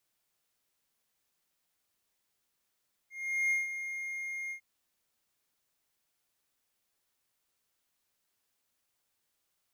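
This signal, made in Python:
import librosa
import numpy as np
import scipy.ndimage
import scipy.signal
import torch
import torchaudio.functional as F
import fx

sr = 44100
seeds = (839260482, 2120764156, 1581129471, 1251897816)

y = fx.adsr_tone(sr, wave='triangle', hz=2130.0, attack_ms=408.0, decay_ms=161.0, sustain_db=-10.0, held_s=1.41, release_ms=92.0, level_db=-23.5)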